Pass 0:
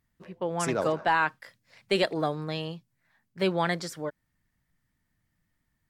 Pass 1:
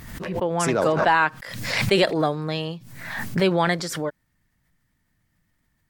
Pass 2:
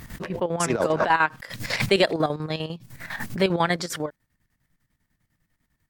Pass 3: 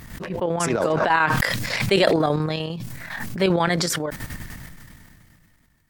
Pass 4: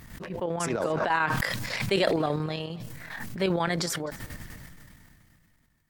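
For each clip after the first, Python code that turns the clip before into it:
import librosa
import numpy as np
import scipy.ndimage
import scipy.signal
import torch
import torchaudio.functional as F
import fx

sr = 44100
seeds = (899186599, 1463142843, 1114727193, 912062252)

y1 = fx.pre_swell(x, sr, db_per_s=47.0)
y1 = y1 * librosa.db_to_amplitude(5.5)
y2 = fx.chopper(y1, sr, hz=10.0, depth_pct=65, duty_pct=60)
y3 = fx.sustainer(y2, sr, db_per_s=22.0)
y4 = fx.echo_feedback(y3, sr, ms=258, feedback_pct=51, wet_db=-23)
y4 = y4 * librosa.db_to_amplitude(-6.5)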